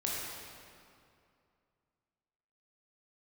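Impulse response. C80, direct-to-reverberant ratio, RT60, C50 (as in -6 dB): -0.5 dB, -5.0 dB, 2.5 s, -2.5 dB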